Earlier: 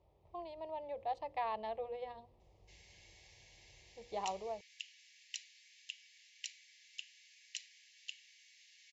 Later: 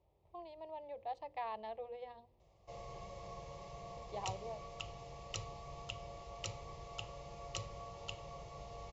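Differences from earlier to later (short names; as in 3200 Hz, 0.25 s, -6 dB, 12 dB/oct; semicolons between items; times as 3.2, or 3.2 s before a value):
speech -4.0 dB; background: remove brick-wall FIR high-pass 1600 Hz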